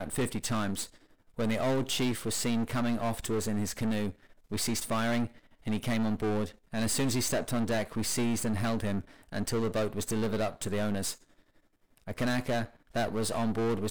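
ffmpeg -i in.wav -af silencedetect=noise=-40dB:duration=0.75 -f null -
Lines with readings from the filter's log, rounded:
silence_start: 11.14
silence_end: 12.07 | silence_duration: 0.93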